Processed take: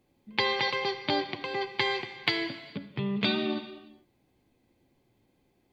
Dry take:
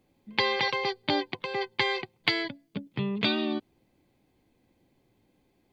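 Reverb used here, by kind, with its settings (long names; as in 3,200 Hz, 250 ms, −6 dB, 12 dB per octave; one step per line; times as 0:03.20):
reverb whose tail is shaped and stops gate 470 ms falling, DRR 8 dB
level −1.5 dB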